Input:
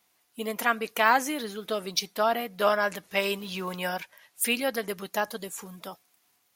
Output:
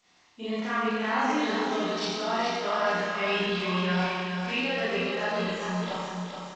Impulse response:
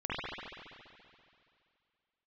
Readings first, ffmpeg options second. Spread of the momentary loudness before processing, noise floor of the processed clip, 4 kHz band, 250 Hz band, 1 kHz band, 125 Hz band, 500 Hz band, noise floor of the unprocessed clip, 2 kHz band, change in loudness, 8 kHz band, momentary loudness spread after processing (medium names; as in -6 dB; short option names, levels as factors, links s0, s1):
14 LU, -62 dBFS, +1.0 dB, +5.5 dB, -0.5 dB, +10.0 dB, 0.0 dB, -70 dBFS, 0.0 dB, 0.0 dB, -9.0 dB, 6 LU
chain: -filter_complex "[0:a]asplit=2[s0][s1];[s1]adelay=27,volume=0.562[s2];[s0][s2]amix=inputs=2:normalize=0,areverse,acompressor=threshold=0.0158:ratio=4,areverse,aecho=1:1:424|848|1272|1696:0.531|0.191|0.0688|0.0248[s3];[1:a]atrim=start_sample=2205,asetrate=74970,aresample=44100[s4];[s3][s4]afir=irnorm=-1:irlink=0,acrossover=split=5000[s5][s6];[s6]acompressor=threshold=0.001:ratio=4:attack=1:release=60[s7];[s5][s7]amix=inputs=2:normalize=0,volume=2.24" -ar 16000 -c:a g722